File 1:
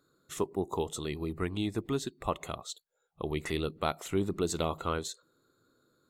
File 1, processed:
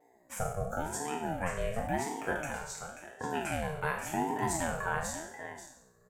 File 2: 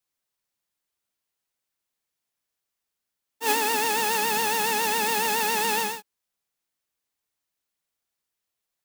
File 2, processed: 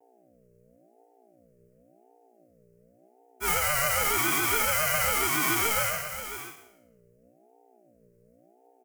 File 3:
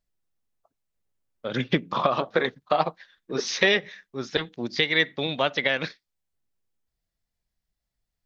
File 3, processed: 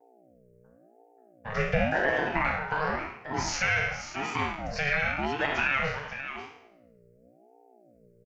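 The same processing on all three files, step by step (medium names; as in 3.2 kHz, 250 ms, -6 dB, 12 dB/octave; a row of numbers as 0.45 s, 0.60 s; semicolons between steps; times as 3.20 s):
spectral sustain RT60 0.72 s; hum 60 Hz, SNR 28 dB; high-pass 110 Hz 12 dB/octave; comb 6.5 ms, depth 60%; peak limiter -11.5 dBFS; static phaser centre 1.5 kHz, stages 4; vibrato 0.71 Hz 38 cents; delay 535 ms -10.5 dB; ring modulator with a swept carrier 440 Hz, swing 35%, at 0.92 Hz; trim +2.5 dB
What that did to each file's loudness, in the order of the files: -1.0 LU, -1.5 LU, -3.0 LU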